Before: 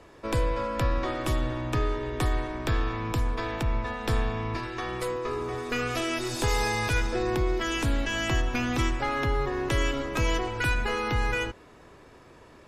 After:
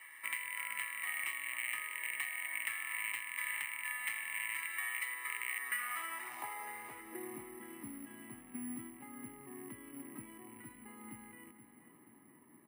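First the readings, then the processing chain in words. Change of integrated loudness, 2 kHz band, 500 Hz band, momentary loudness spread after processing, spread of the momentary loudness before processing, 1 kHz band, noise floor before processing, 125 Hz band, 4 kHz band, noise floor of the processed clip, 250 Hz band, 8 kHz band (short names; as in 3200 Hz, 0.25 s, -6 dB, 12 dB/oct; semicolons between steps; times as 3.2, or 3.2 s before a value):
-11.0 dB, -6.5 dB, -26.5 dB, 14 LU, 4 LU, -16.5 dB, -52 dBFS, -34.0 dB, -14.5 dB, -62 dBFS, -18.0 dB, -4.0 dB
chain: rattling part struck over -35 dBFS, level -23 dBFS; bell 2000 Hz +12.5 dB 1.2 oct; notch 680 Hz, Q 12; comb 1 ms, depth 76%; compressor 2.5:1, threshold -33 dBFS, peak gain reduction 12.5 dB; band-pass sweep 2200 Hz -> 240 Hz, 5.48–7.45; feedback echo 0.477 s, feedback 57%, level -12 dB; careless resampling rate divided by 4×, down none, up zero stuff; three-band isolator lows -17 dB, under 160 Hz, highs -15 dB, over 6600 Hz; gain -3.5 dB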